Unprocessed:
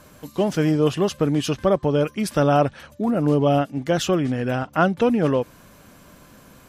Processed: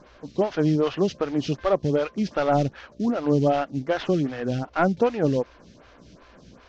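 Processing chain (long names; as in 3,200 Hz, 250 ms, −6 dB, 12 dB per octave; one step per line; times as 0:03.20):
variable-slope delta modulation 32 kbit/s
hum with harmonics 60 Hz, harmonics 11, −51 dBFS −4 dB per octave
phaser with staggered stages 2.6 Hz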